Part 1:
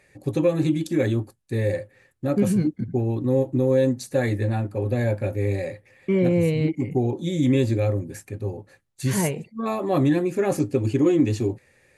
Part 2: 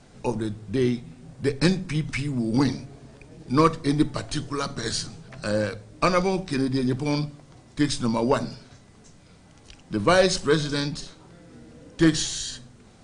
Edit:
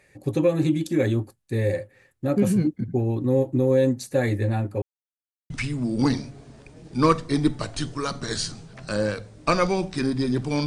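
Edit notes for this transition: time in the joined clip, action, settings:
part 1
0:04.82–0:05.50: silence
0:05.50: continue with part 2 from 0:02.05

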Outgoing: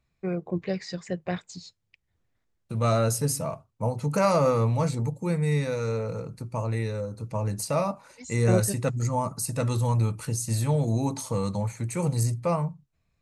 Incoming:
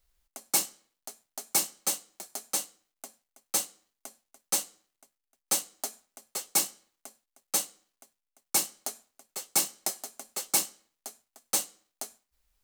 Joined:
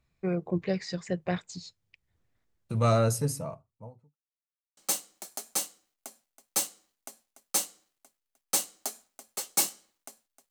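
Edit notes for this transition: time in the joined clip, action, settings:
outgoing
0:02.81–0:04.17: fade out and dull
0:04.17–0:04.77: silence
0:04.77: continue with incoming from 0:01.75

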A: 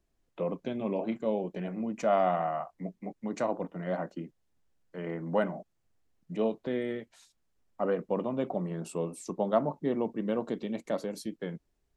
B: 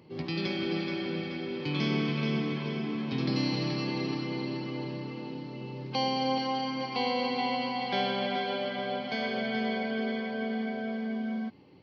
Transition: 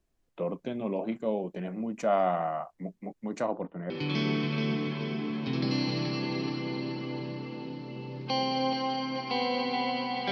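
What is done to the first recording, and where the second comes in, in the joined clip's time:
A
0:03.36–0:03.90: low-pass filter 9,600 Hz → 1,500 Hz
0:03.90: continue with B from 0:01.55

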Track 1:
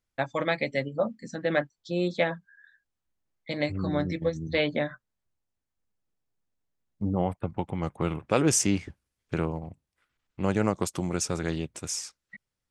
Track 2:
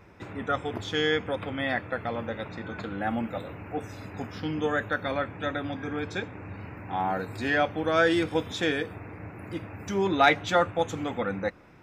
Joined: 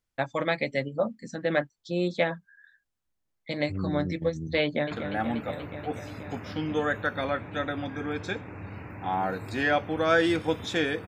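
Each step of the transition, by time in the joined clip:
track 1
0:04.63–0:04.91: delay throw 240 ms, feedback 80%, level −8 dB
0:04.91: continue with track 2 from 0:02.78

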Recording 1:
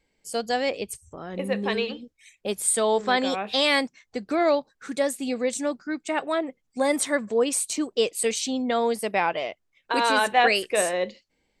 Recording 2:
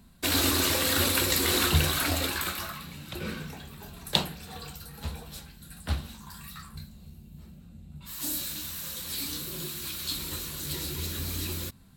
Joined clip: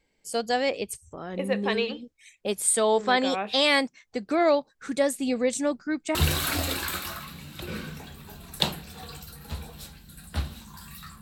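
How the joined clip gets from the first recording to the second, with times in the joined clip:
recording 1
0:04.79–0:06.15: low-shelf EQ 120 Hz +10.5 dB
0:06.15: continue with recording 2 from 0:01.68

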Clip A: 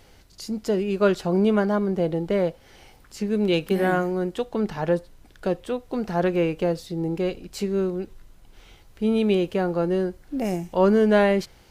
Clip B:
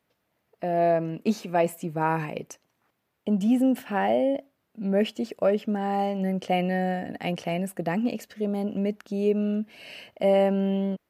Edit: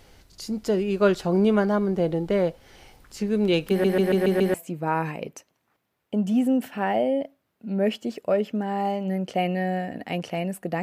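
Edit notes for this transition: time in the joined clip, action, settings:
clip A
0:03.70: stutter in place 0.14 s, 6 plays
0:04.54: continue with clip B from 0:01.68

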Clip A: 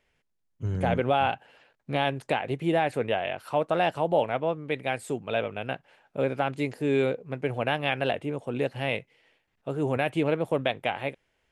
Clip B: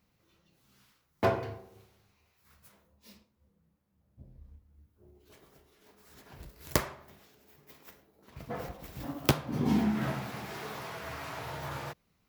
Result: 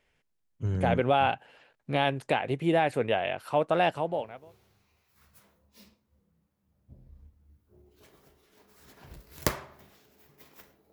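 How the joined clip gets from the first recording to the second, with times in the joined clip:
clip A
0:04.26: continue with clip B from 0:01.55, crossfade 0.74 s quadratic

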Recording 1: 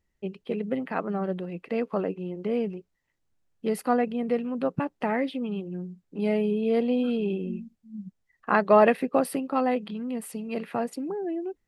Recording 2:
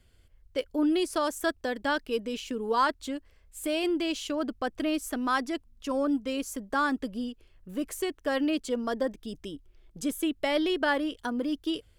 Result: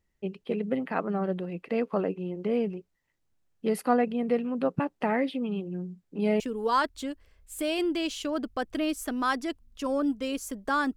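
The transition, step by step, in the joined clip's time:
recording 1
0:06.40: continue with recording 2 from 0:02.45

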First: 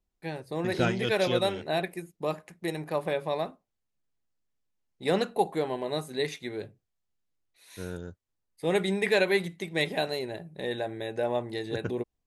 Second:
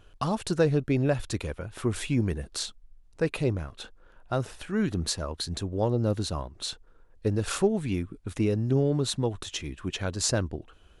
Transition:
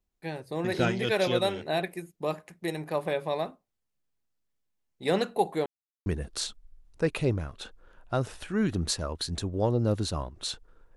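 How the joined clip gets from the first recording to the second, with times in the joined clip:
first
0:05.66–0:06.06: silence
0:06.06: continue with second from 0:02.25

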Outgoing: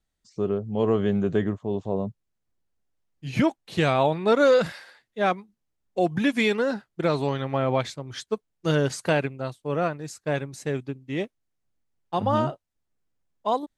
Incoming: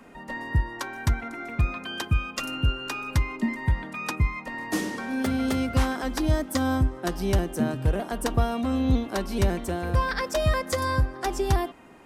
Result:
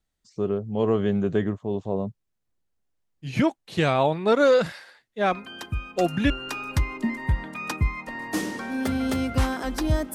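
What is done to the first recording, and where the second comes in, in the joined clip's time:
outgoing
0:05.32: mix in incoming from 0:01.71 0.98 s −6 dB
0:06.30: continue with incoming from 0:02.69

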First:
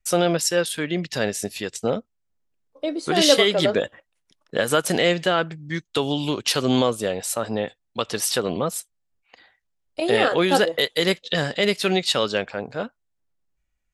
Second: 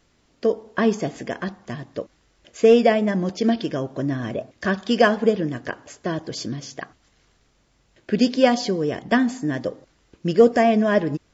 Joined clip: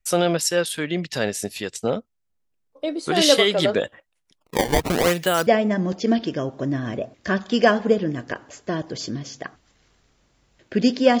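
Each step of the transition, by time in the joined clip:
first
0:04.38–0:05.47: sample-and-hold swept by an LFO 19×, swing 160% 0.83 Hz
0:05.47: continue with second from 0:02.84

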